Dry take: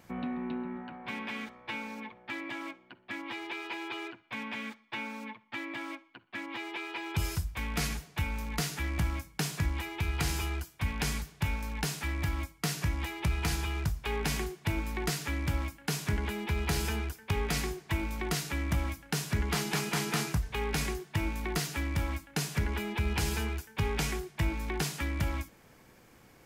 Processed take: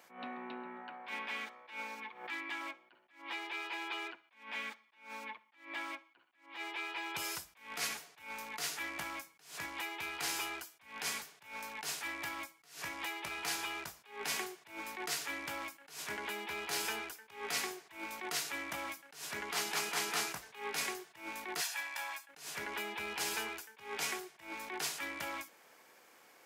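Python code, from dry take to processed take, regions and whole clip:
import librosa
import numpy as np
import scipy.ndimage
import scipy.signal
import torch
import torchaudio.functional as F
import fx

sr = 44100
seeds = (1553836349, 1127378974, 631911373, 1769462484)

y = fx.chain(x, sr, fx.peak_eq(hz=590.0, db=-12.0, octaves=0.33),
    fx.pre_swell(db_per_s=100.0), at=(1.95, 2.61))
y = fx.chain(y, sr, fx.highpass(hz=800.0, slope=12),
    fx.comb(ms=1.2, depth=0.49), at=(21.61, 22.29))
y = scipy.signal.sosfilt(scipy.signal.butter(2, 540.0, 'highpass', fs=sr, output='sos'), y)
y = fx.attack_slew(y, sr, db_per_s=130.0)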